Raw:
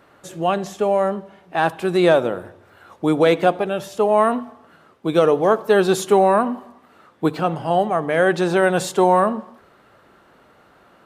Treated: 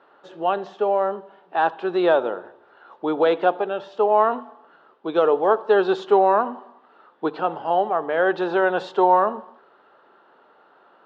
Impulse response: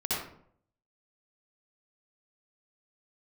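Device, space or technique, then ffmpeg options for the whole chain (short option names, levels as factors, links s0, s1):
phone earpiece: -af "highpass=340,equalizer=f=410:t=q:w=4:g=4,equalizer=f=880:t=q:w=4:g=6,equalizer=f=1400:t=q:w=4:g=3,equalizer=f=2200:t=q:w=4:g=-9,lowpass=f=3800:w=0.5412,lowpass=f=3800:w=1.3066,volume=0.668"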